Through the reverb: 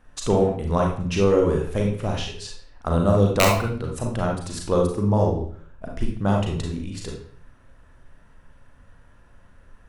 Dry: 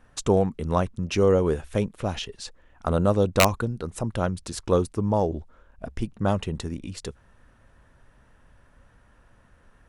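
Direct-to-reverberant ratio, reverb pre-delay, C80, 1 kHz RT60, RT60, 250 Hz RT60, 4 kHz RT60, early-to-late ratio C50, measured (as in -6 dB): -0.5 dB, 35 ms, 8.5 dB, 0.50 s, 0.50 s, 0.60 s, 0.50 s, 3.5 dB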